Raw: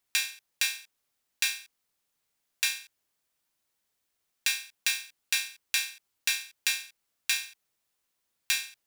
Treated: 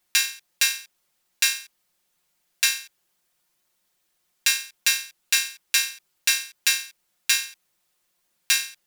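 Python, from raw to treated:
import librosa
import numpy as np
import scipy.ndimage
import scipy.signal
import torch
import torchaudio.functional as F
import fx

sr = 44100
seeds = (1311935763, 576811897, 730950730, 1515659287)

y = x + 0.97 * np.pad(x, (int(5.6 * sr / 1000.0), 0))[:len(x)]
y = y * 10.0 ** (4.5 / 20.0)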